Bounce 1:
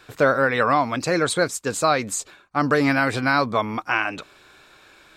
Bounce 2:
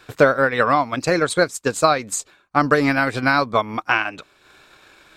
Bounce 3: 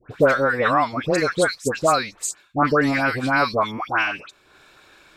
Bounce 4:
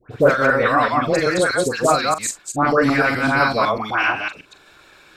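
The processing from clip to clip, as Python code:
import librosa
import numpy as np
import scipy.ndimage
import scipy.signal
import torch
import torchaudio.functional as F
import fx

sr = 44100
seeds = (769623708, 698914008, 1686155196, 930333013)

y1 = fx.transient(x, sr, attack_db=5, sustain_db=-6)
y1 = F.gain(torch.from_numpy(y1), 1.0).numpy()
y2 = fx.dispersion(y1, sr, late='highs', ms=115.0, hz=1600.0)
y2 = F.gain(torch.from_numpy(y2), -1.5).numpy()
y3 = fx.reverse_delay(y2, sr, ms=126, wet_db=-1.0)
y3 = fx.doubler(y3, sr, ms=42.0, db=-11.5)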